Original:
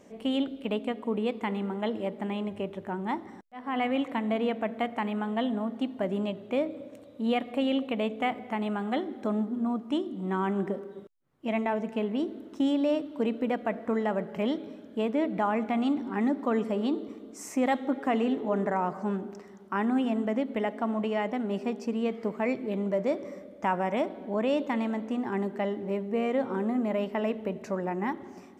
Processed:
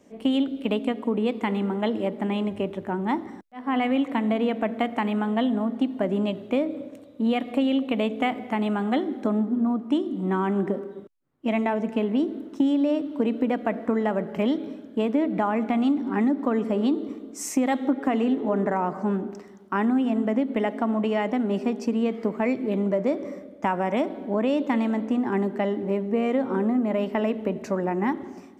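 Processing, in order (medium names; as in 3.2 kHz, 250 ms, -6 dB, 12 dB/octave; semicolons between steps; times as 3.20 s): peaking EQ 280 Hz +5 dB 0.59 oct; compression, threshold -26 dBFS, peak gain reduction 8.5 dB; three bands expanded up and down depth 40%; trim +6.5 dB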